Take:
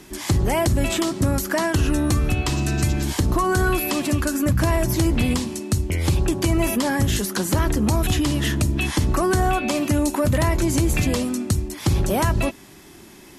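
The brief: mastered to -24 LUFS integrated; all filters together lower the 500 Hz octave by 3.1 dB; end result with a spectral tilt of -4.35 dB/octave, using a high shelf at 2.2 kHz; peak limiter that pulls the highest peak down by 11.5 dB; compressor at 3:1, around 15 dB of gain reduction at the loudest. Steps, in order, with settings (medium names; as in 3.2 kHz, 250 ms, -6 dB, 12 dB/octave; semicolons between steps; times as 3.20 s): peaking EQ 500 Hz -5 dB; treble shelf 2.2 kHz +4 dB; compression 3:1, threshold -37 dBFS; trim +14 dB; peak limiter -15 dBFS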